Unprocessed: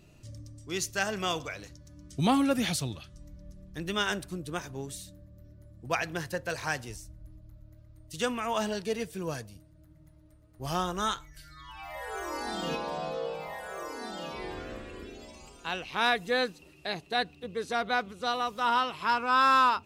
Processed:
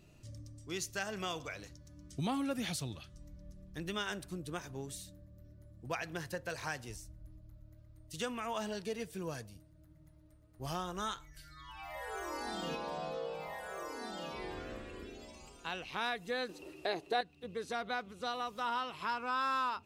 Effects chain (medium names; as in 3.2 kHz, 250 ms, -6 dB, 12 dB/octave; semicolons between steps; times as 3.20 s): 16.49–17.21 s: FFT filter 210 Hz 0 dB, 330 Hz +14 dB, 2.3 kHz +5 dB; compression 2:1, threshold -33 dBFS, peak gain reduction 10.5 dB; trim -4 dB